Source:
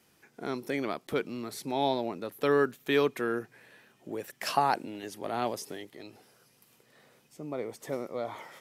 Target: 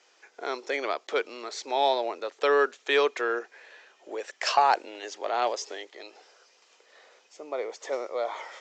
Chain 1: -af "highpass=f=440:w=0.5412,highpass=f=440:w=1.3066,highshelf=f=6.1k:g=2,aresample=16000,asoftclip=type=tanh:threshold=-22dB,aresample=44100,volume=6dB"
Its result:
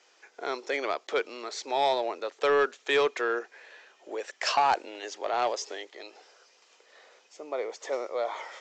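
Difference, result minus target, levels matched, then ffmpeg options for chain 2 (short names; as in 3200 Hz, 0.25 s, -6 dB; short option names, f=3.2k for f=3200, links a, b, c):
soft clip: distortion +10 dB
-af "highpass=f=440:w=0.5412,highpass=f=440:w=1.3066,highshelf=f=6.1k:g=2,aresample=16000,asoftclip=type=tanh:threshold=-14.5dB,aresample=44100,volume=6dB"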